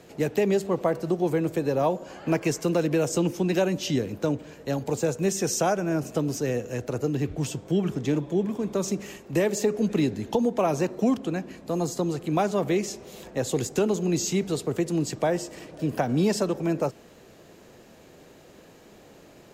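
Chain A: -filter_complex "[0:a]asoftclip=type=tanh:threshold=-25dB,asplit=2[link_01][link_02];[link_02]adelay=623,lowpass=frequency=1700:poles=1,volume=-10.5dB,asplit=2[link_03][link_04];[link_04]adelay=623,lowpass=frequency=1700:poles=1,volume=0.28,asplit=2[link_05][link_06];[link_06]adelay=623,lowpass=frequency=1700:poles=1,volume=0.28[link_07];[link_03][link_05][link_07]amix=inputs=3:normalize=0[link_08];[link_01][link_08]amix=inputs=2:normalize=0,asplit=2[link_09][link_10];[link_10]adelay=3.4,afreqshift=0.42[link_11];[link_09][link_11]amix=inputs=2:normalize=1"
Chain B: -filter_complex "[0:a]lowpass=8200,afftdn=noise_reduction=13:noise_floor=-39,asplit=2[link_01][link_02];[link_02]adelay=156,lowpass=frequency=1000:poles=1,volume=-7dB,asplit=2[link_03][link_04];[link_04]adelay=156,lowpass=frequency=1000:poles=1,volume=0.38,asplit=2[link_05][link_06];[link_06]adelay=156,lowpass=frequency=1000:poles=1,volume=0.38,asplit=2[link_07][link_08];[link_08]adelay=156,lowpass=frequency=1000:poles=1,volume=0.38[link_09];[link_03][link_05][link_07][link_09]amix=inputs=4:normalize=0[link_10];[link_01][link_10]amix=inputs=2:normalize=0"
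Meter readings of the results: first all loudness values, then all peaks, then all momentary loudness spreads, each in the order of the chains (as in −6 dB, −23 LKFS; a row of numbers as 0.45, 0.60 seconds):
−34.0, −26.0 LKFS; −20.5, −10.5 dBFS; 11, 7 LU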